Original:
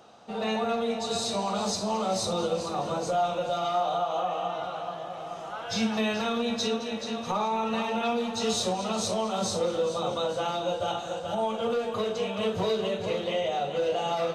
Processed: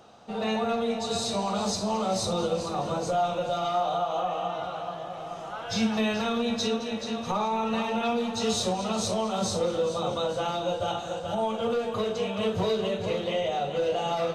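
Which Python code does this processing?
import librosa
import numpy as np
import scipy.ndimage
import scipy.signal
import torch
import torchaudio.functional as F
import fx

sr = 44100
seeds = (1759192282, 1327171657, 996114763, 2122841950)

y = fx.low_shelf(x, sr, hz=120.0, db=8.0)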